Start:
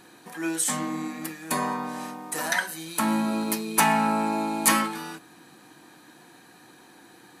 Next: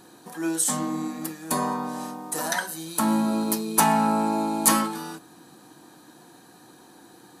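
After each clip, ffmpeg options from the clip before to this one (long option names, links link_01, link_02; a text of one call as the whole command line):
ffmpeg -i in.wav -af "equalizer=frequency=2200:width=1.4:gain=-10,volume=2.5dB" out.wav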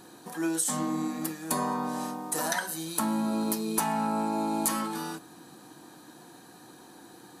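ffmpeg -i in.wav -af "acompressor=threshold=-25dB:ratio=6" out.wav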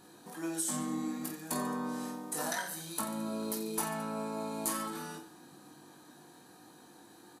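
ffmpeg -i in.wav -af "aecho=1:1:20|48|87.2|142.1|218.9:0.631|0.398|0.251|0.158|0.1,volume=-7.5dB" out.wav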